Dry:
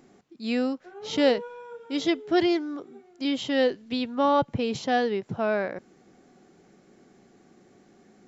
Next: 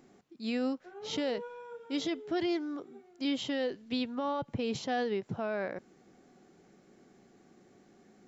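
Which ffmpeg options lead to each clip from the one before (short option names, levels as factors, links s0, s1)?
-af "alimiter=limit=0.0944:level=0:latency=1:release=71,volume=0.631"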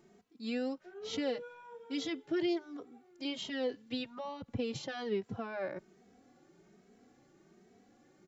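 -filter_complex "[0:a]asplit=2[s0][s1];[s1]adelay=2.8,afreqshift=1.2[s2];[s0][s2]amix=inputs=2:normalize=1"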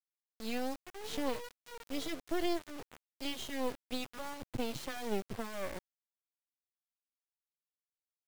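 -af "acrusher=bits=5:dc=4:mix=0:aa=0.000001,volume=1.33"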